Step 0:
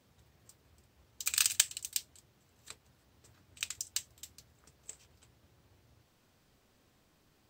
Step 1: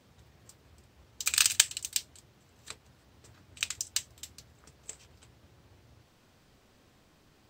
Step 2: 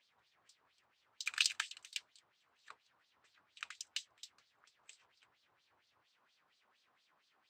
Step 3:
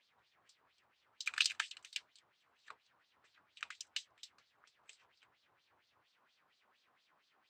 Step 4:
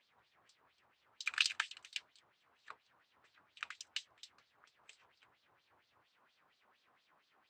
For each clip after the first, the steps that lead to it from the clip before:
treble shelf 10 kHz -8 dB; trim +6.5 dB
LFO band-pass sine 4.3 Hz 990–4400 Hz; trim -2 dB
treble shelf 6.6 kHz -8 dB; trim +1.5 dB
treble shelf 3.5 kHz -6.5 dB; trim +3 dB

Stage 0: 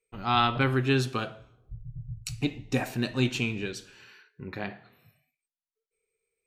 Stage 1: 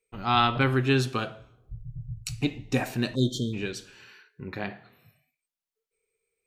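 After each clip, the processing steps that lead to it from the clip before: spectral selection erased 3.15–3.53 s, 660–3100 Hz; trim +1.5 dB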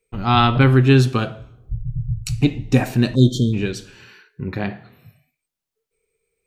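bass shelf 290 Hz +9.5 dB; trim +5 dB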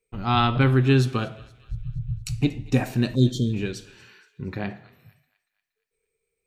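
thinning echo 235 ms, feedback 56%, high-pass 1.1 kHz, level -21 dB; trim -5.5 dB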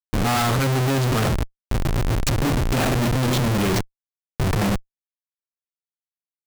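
Schmitt trigger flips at -36 dBFS; trim +5.5 dB

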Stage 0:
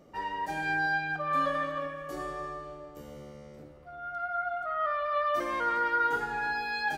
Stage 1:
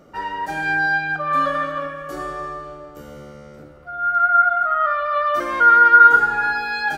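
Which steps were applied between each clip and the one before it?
peaking EQ 1.4 kHz +12.5 dB 0.2 oct; trim +7 dB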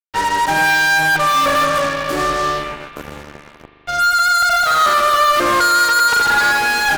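fuzz box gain 29 dB, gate -35 dBFS; spring tank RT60 3.4 s, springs 40 ms, chirp 75 ms, DRR 8.5 dB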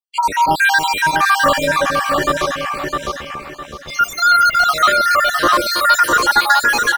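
random holes in the spectrogram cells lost 70%; feedback delay 657 ms, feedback 31%, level -4 dB; trim +3.5 dB

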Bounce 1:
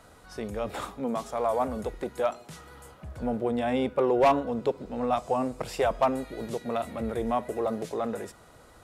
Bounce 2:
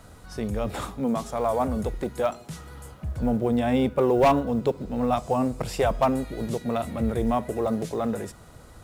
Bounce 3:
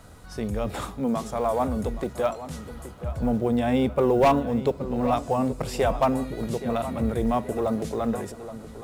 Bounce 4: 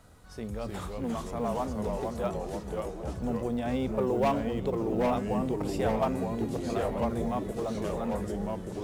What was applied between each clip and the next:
companded quantiser 8-bit; tone controls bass +9 dB, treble +3 dB; trim +1.5 dB
filtered feedback delay 823 ms, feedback 40%, low-pass 3.4 kHz, level -13 dB
ever faster or slower copies 261 ms, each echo -2 st, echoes 3; trim -8 dB

